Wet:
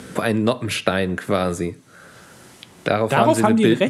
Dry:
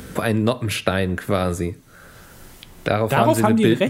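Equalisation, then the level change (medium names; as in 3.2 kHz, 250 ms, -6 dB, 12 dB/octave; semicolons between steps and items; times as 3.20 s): high-pass 130 Hz 12 dB/octave; low-pass 11 kHz 24 dB/octave; +1.0 dB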